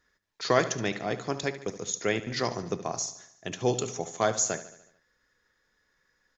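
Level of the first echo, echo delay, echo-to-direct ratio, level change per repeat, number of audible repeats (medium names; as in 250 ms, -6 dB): -14.5 dB, 73 ms, -13.0 dB, -5.0 dB, 5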